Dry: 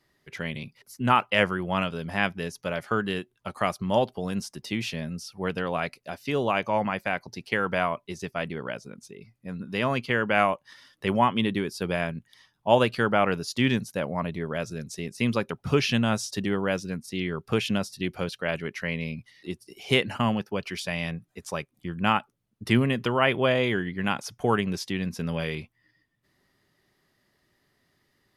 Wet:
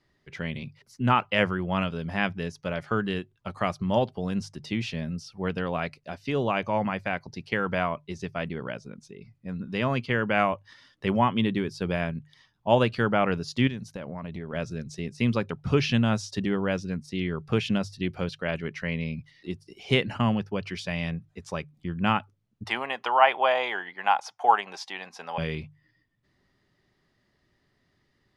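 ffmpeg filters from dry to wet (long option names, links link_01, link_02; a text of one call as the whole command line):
ffmpeg -i in.wav -filter_complex "[0:a]asettb=1/sr,asplit=3[link_01][link_02][link_03];[link_01]atrim=end=13.674[link_04];[link_02]atrim=start=13.67:end=14.53,asetpts=PTS-STARTPTS,afade=type=in:duration=0.004:curve=qsin,afade=type=out:start_time=0.856:duration=0.004:curve=qsin,acompressor=threshold=-32dB:ratio=5:attack=3.2:release=140:knee=1:detection=peak[link_05];[link_03]atrim=start=14.526[link_06];[link_04][link_05]acrossfade=duration=0.004:curve1=hsin:curve2=qsin[link_07];[link_07][link_06]acrossfade=duration=0.004:curve1=qsin:curve2=hsin,asettb=1/sr,asplit=3[link_08][link_09][link_10];[link_08]atrim=end=22.654[link_11];[link_09]atrim=start=22.65:end=25.38,asetpts=PTS-STARTPTS,afade=type=in:duration=0.004:curve=qsin,afade=type=out:start_time=2.726:duration=0.004:curve=qsin,highpass=frequency=810:width_type=q:width=5.4[link_12];[link_10]atrim=start=25.376[link_13];[link_11][link_12]acrossfade=duration=0.004:curve1=hsin:curve2=qsin[link_14];[link_14][link_13]acrossfade=duration=0.004:curve1=qsin:curve2=hsin,lowpass=6200,lowshelf=frequency=170:gain=8,bandreject=frequency=50:width_type=h:width=6,bandreject=frequency=100:width_type=h:width=6,bandreject=frequency=150:width_type=h:width=6,volume=-2dB" out.wav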